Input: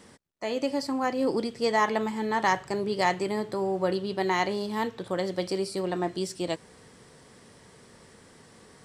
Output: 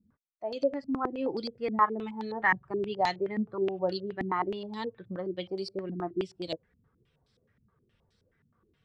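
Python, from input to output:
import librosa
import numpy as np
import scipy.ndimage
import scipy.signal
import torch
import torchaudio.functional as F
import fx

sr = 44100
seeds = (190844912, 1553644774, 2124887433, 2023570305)

y = fx.bin_expand(x, sr, power=1.5)
y = fx.filter_held_lowpass(y, sr, hz=9.5, low_hz=230.0, high_hz=4400.0)
y = y * librosa.db_to_amplitude(-5.0)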